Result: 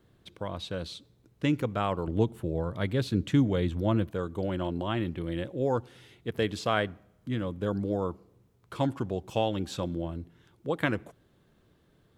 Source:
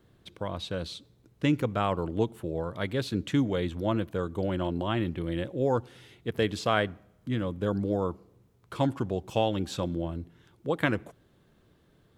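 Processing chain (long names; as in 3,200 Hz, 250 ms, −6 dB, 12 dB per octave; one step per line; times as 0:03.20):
0:02.07–0:04.10: low-shelf EQ 230 Hz +7.5 dB
level −1.5 dB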